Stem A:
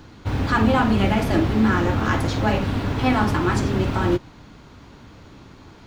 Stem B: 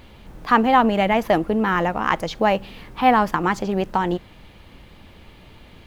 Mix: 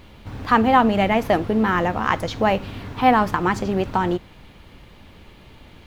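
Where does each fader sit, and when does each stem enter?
-10.5 dB, -0.5 dB; 0.00 s, 0.00 s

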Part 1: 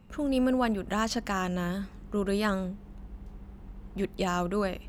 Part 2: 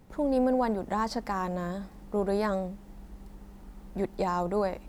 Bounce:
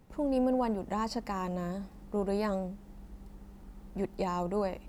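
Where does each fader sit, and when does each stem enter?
-16.0 dB, -4.0 dB; 0.00 s, 0.00 s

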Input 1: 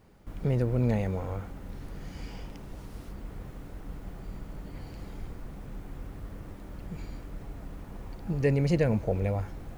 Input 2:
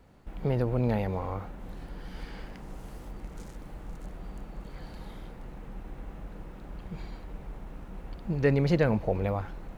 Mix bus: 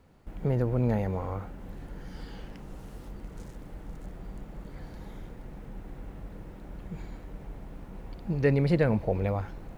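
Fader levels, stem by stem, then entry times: -8.5 dB, -3.0 dB; 0.00 s, 0.00 s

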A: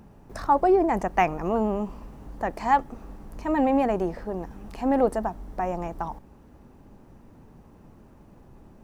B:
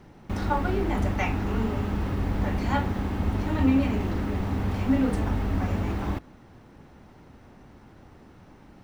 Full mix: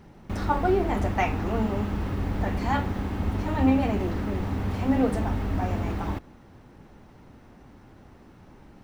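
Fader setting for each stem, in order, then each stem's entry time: -6.5 dB, -1.0 dB; 0.00 s, 0.00 s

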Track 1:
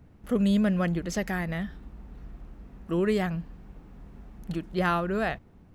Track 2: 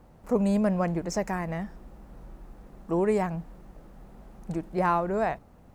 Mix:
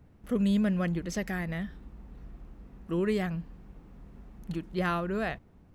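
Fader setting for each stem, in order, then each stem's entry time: -3.5 dB, -18.0 dB; 0.00 s, 0.00 s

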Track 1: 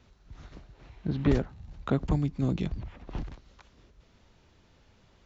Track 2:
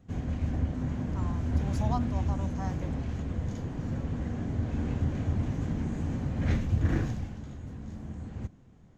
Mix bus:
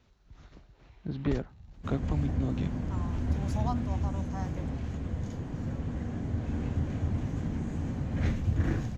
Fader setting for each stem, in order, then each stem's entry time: -5.0 dB, -1.5 dB; 0.00 s, 1.75 s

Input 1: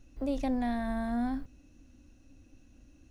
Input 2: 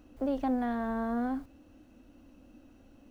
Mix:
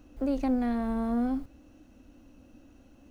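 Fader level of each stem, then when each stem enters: -4.0 dB, +0.5 dB; 0.00 s, 0.00 s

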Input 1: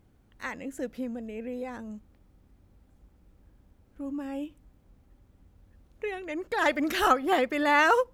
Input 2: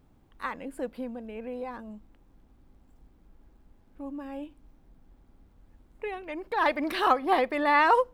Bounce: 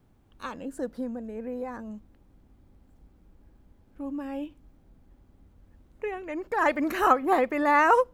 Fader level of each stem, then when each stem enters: -4.5 dB, -2.5 dB; 0.00 s, 0.00 s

